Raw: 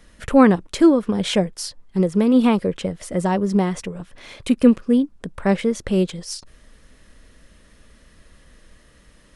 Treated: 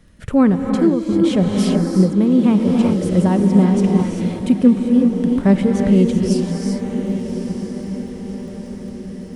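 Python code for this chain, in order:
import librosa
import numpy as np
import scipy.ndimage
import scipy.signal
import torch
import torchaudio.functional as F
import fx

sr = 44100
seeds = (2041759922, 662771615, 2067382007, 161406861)

y = fx.dmg_crackle(x, sr, seeds[0], per_s=24.0, level_db=-40.0)
y = fx.echo_diffused(y, sr, ms=1156, feedback_pct=52, wet_db=-11.0)
y = fx.rev_gated(y, sr, seeds[1], gate_ms=420, shape='rising', drr_db=3.0)
y = fx.rider(y, sr, range_db=4, speed_s=0.5)
y = fx.peak_eq(y, sr, hz=120.0, db=13.0, octaves=2.6)
y = F.gain(torch.from_numpy(y), -5.0).numpy()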